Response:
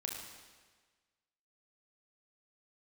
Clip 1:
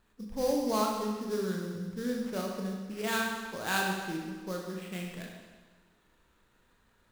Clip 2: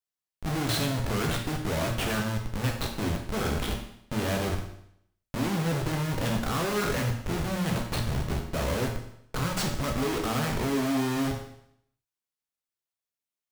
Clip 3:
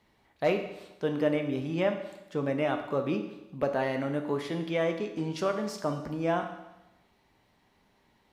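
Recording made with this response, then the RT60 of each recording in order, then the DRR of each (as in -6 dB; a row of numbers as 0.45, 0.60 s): 1; 1.4, 0.70, 0.95 s; -0.5, 1.0, 4.5 dB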